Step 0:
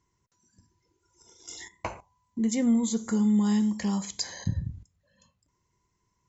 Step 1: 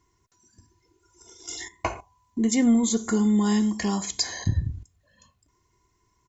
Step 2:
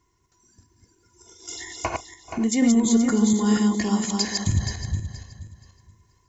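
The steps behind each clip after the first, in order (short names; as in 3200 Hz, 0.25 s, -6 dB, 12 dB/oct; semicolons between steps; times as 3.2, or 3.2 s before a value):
comb 2.8 ms, depth 47%; gain +5.5 dB
regenerating reverse delay 0.238 s, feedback 47%, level -2.5 dB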